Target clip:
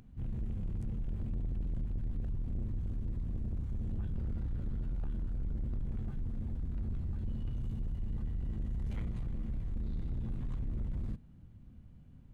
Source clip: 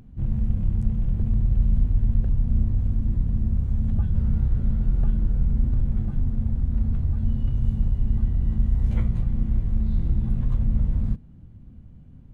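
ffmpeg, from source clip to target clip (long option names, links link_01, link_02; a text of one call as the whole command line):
ffmpeg -i in.wav -af "tiltshelf=frequency=920:gain=-3.5,asoftclip=type=tanh:threshold=-26dB,volume=-5.5dB" out.wav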